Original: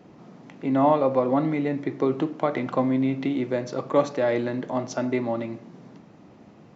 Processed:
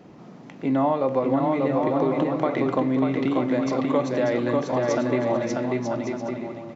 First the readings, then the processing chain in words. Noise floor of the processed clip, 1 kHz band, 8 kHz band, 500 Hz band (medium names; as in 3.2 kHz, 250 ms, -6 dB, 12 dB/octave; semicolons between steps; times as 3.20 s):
-44 dBFS, +1.0 dB, no reading, +1.5 dB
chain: bouncing-ball echo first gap 590 ms, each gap 0.6×, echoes 5; compression 4:1, threshold -21 dBFS, peak gain reduction 7.5 dB; trim +2.5 dB